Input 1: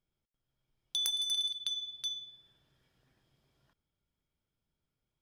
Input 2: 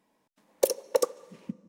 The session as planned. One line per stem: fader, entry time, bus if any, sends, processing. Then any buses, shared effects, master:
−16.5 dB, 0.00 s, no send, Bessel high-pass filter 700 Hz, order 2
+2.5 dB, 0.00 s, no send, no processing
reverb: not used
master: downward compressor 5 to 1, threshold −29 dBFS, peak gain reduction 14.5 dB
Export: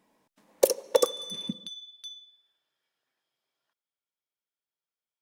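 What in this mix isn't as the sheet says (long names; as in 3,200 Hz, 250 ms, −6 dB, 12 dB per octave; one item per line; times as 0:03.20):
stem 1 −16.5 dB → −5.5 dB
master: missing downward compressor 5 to 1, threshold −29 dBFS, peak gain reduction 14.5 dB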